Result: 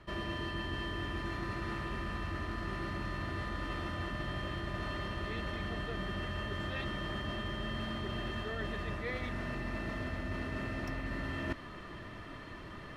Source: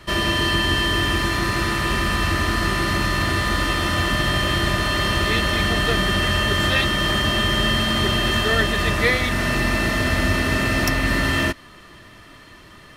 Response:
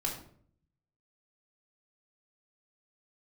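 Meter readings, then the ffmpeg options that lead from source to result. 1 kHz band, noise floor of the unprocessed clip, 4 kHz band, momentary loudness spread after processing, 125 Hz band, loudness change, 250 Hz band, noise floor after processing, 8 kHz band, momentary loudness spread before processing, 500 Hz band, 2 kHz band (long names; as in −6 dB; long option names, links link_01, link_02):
−17.5 dB, −45 dBFS, −23.5 dB, 1 LU, −16.0 dB, −19.0 dB, −16.0 dB, −47 dBFS, −29.0 dB, 2 LU, −16.5 dB, −20.0 dB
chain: -af "lowpass=frequency=1500:poles=1,areverse,acompressor=threshold=-34dB:ratio=20,areverse"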